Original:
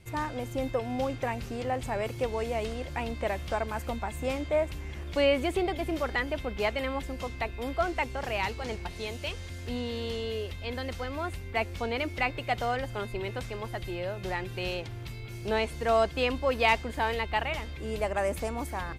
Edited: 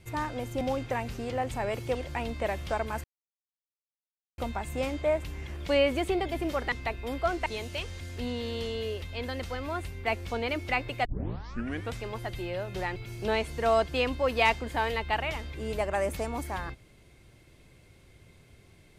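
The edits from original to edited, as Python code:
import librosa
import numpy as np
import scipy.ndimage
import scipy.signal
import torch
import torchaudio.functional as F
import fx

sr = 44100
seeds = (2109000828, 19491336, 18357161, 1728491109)

y = fx.edit(x, sr, fx.cut(start_s=0.61, length_s=0.32),
    fx.cut(start_s=2.27, length_s=0.49),
    fx.insert_silence(at_s=3.85, length_s=1.34),
    fx.cut(start_s=6.19, length_s=1.08),
    fx.cut(start_s=8.01, length_s=0.94),
    fx.tape_start(start_s=12.54, length_s=0.91),
    fx.cut(start_s=14.45, length_s=0.74), tone=tone)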